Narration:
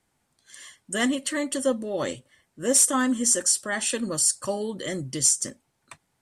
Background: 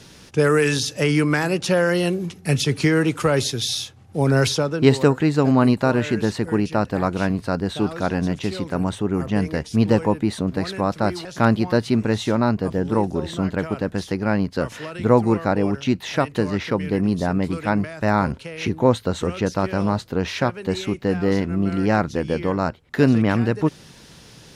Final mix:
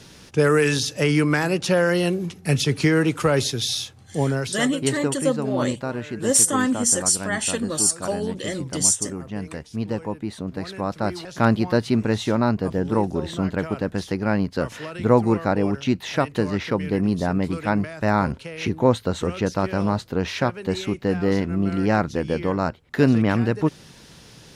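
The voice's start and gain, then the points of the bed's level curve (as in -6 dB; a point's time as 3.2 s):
3.60 s, +2.0 dB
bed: 4.18 s -0.5 dB
4.43 s -9.5 dB
10.02 s -9.5 dB
11.47 s -1 dB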